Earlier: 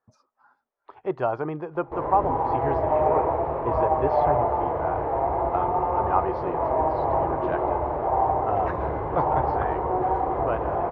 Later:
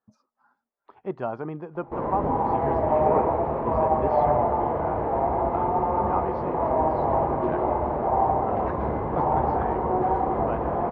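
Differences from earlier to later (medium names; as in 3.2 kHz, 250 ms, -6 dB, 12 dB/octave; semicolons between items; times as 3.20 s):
speech -5.5 dB; master: add peaking EQ 210 Hz +14 dB 0.5 oct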